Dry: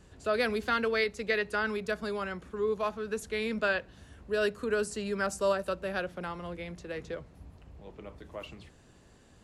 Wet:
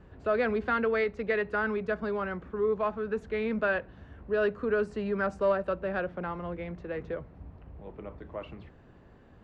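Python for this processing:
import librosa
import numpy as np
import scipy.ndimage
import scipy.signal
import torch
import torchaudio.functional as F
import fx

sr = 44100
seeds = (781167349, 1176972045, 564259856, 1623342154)

p1 = 10.0 ** (-30.0 / 20.0) * np.tanh(x / 10.0 ** (-30.0 / 20.0))
p2 = x + (p1 * librosa.db_to_amplitude(-5.5))
y = scipy.signal.sosfilt(scipy.signal.butter(2, 1800.0, 'lowpass', fs=sr, output='sos'), p2)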